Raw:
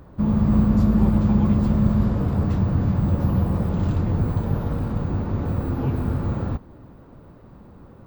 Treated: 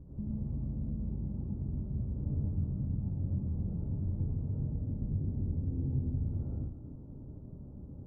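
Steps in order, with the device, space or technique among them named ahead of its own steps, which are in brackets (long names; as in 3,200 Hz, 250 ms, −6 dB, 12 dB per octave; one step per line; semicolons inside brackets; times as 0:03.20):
0:04.58–0:06.18: tilt shelving filter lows +5 dB, about 780 Hz
television next door (downward compressor 6 to 1, threshold −32 dBFS, peak gain reduction 18 dB; low-pass filter 260 Hz 12 dB per octave; convolution reverb RT60 0.35 s, pre-delay 79 ms, DRR −4 dB)
feedback echo with a band-pass in the loop 114 ms, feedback 75%, band-pass 920 Hz, level −9 dB
level −4 dB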